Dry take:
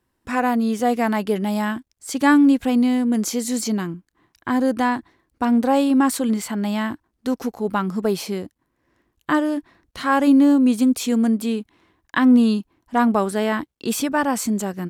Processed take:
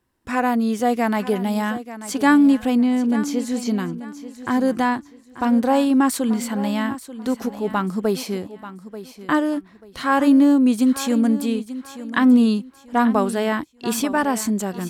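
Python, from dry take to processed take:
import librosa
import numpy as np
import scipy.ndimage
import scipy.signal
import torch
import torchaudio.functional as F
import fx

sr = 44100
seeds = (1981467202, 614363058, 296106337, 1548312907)

y = fx.high_shelf(x, sr, hz=4800.0, db=-11.5, at=(2.77, 3.68))
y = fx.echo_feedback(y, sr, ms=887, feedback_pct=28, wet_db=-14)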